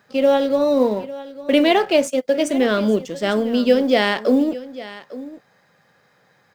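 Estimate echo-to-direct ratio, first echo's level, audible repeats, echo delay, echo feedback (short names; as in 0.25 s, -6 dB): -16.5 dB, -16.5 dB, 1, 0.851 s, no steady repeat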